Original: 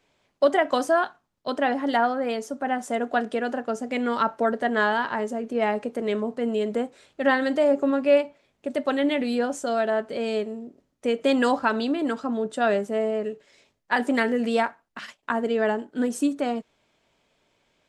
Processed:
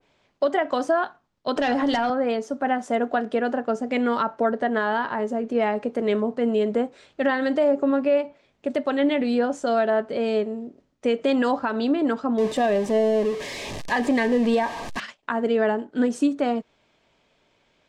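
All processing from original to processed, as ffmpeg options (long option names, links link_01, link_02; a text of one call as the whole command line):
ffmpeg -i in.wav -filter_complex "[0:a]asettb=1/sr,asplit=3[link_01][link_02][link_03];[link_01]atrim=end=1.564[link_04];[link_02]atrim=start=1.56:end=2.1,asetpts=PTS-STARTPTS,afade=type=in:duration=0.004:curve=qsin,afade=type=out:start_time=0.536:duration=0.004:curve=qsin,bandreject=frequency=88.58:width_type=h:width=4,bandreject=frequency=177.16:width_type=h:width=4,bandreject=frequency=265.74:width_type=h:width=4,bandreject=frequency=354.32:width_type=h:width=4,bandreject=frequency=442.9:width_type=h:width=4,bandreject=frequency=531.48:width_type=h:width=4,bandreject=frequency=620.06:width_type=h:width=4,bandreject=frequency=708.64:width_type=h:width=4,bandreject=frequency=797.22:width_type=h:width=4,bandreject=frequency=885.8:width_type=h:width=4,bandreject=frequency=974.38:width_type=h:width=4,bandreject=frequency=1062.96:width_type=h:width=4,bandreject=frequency=1151.54:width_type=h:width=4,bandreject=frequency=1240.12:width_type=h:width=4,bandreject=frequency=1328.7:width_type=h:width=4,bandreject=frequency=1417.28:width_type=h:width=4,bandreject=frequency=1505.86:width_type=h:width=4,bandreject=frequency=1594.44:width_type=h:width=4,bandreject=frequency=1683.02:width_type=h:width=4,bandreject=frequency=1771.6:width_type=h:width=4,acrossover=split=140|3000[link_05][link_06][link_07];[link_06]acompressor=threshold=-32dB:ratio=6:attack=3.2:release=140:knee=2.83:detection=peak[link_08];[link_05][link_08][link_07]amix=inputs=3:normalize=0,aeval=exprs='0.119*sin(PI/2*2*val(0)/0.119)':channel_layout=same[link_09];[link_03]atrim=start=2.096[link_10];[link_04][link_09]acrossfade=duration=0.004:curve1=hsin:curve2=qsin[link_11];[link_11][link_10]acrossfade=duration=0.004:curve1=qsin:curve2=hsin,asettb=1/sr,asplit=3[link_12][link_13][link_14];[link_12]atrim=end=12.384[link_15];[link_13]atrim=start=12.38:end=15,asetpts=PTS-STARTPTS,afade=type=in:duration=0.004:curve=qsin,afade=type=out:start_time=2.616:duration=0.004:curve=qsin,aeval=exprs='val(0)+0.5*0.0355*sgn(val(0))':channel_layout=same,asuperstop=centerf=1400:order=8:qfactor=4.9,highshelf=frequency=10000:gain=6[link_16];[link_14]atrim=start=14.996[link_17];[link_15][link_16]acrossfade=duration=0.004:curve1=hsin:curve2=qsin[link_18];[link_18][link_17]acrossfade=duration=0.004:curve1=qsin:curve2=hsin,lowpass=6200,alimiter=limit=-16dB:level=0:latency=1:release=180,adynamicequalizer=threshold=0.0112:dfrequency=1600:dqfactor=0.7:tfrequency=1600:tqfactor=0.7:attack=5:release=100:ratio=0.375:range=2.5:mode=cutabove:tftype=highshelf,volume=3.5dB" out.wav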